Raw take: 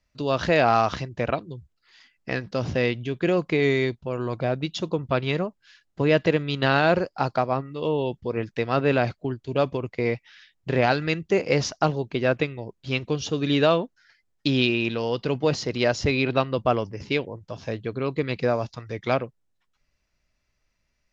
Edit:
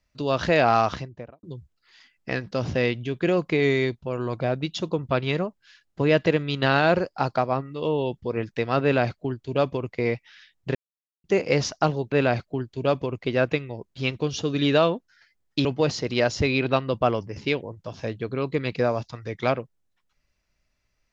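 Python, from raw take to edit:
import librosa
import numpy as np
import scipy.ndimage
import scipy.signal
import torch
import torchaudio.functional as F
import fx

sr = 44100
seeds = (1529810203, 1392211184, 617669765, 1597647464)

y = fx.studio_fade_out(x, sr, start_s=0.82, length_s=0.61)
y = fx.edit(y, sr, fx.duplicate(start_s=8.83, length_s=1.12, to_s=12.12),
    fx.silence(start_s=10.75, length_s=0.49),
    fx.cut(start_s=14.53, length_s=0.76), tone=tone)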